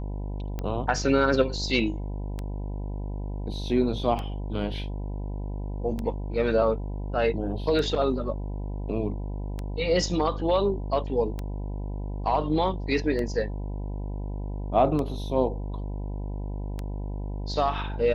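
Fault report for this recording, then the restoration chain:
buzz 50 Hz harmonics 20 -32 dBFS
tick 33 1/3 rpm -19 dBFS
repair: de-click; de-hum 50 Hz, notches 20

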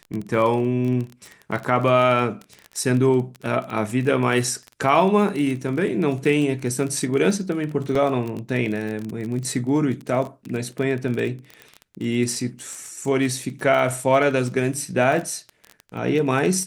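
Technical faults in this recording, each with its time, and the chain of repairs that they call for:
crackle 24/s -26 dBFS
7.95 gap 4 ms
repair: de-click; interpolate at 7.95, 4 ms

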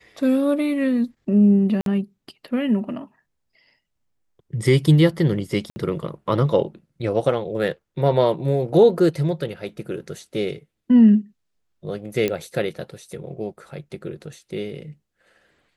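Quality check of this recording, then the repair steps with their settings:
1.81–1.86 gap 52 ms
5.7–5.76 gap 60 ms
12.28 pop -10 dBFS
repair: de-click; interpolate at 1.81, 52 ms; interpolate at 5.7, 60 ms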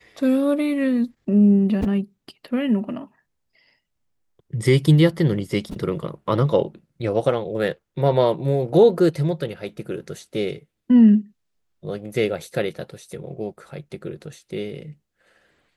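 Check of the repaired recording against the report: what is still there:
none

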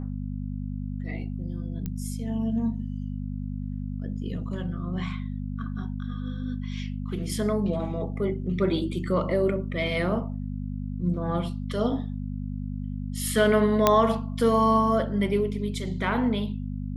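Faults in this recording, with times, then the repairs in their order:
hum 50 Hz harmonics 5 -32 dBFS
1.86 pop -19 dBFS
13.87 pop -4 dBFS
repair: de-click; de-hum 50 Hz, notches 5

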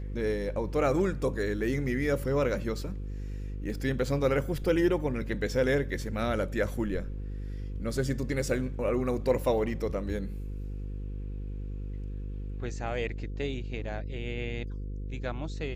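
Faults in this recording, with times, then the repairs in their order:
buzz 50 Hz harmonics 10 -36 dBFS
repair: de-hum 50 Hz, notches 10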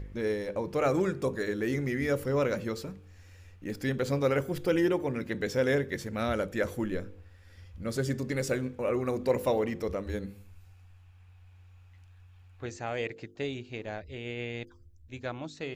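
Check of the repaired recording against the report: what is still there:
none

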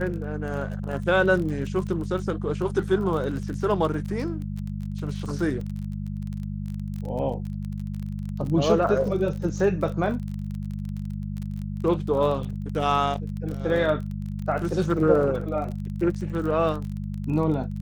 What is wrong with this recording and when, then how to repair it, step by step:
crackle 28/s -31 dBFS
hum 50 Hz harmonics 4 -31 dBFS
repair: de-click; de-hum 50 Hz, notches 4

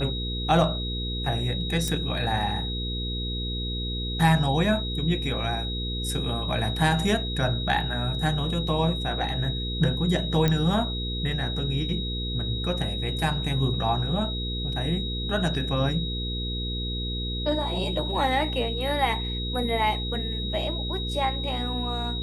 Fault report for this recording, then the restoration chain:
hum 60 Hz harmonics 8 -31 dBFS
tone 3800 Hz -32 dBFS
1.88 pop -14 dBFS
10.48 pop -10 dBFS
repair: de-click; notch 3800 Hz, Q 30; de-hum 60 Hz, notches 8

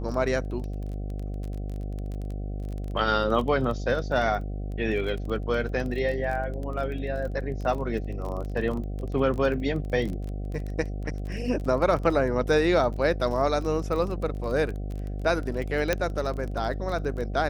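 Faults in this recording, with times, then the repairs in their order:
buzz 50 Hz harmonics 15 -32 dBFS
crackle 23/s -32 dBFS
15.93 pop -9 dBFS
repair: de-click; de-hum 50 Hz, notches 15

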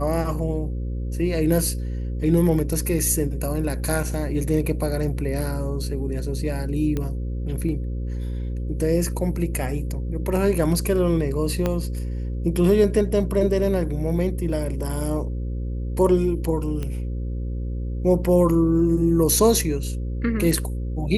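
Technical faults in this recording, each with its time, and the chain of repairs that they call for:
buzz 60 Hz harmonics 9 -27 dBFS
6.97 pop -14 dBFS
11.66 pop -10 dBFS
16.83 pop -17 dBFS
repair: de-click; de-hum 60 Hz, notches 9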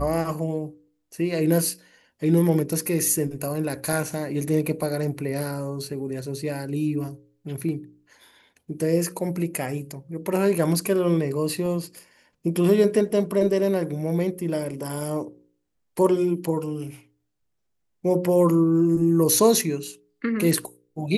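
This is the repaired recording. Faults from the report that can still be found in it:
11.66 pop
16.83 pop

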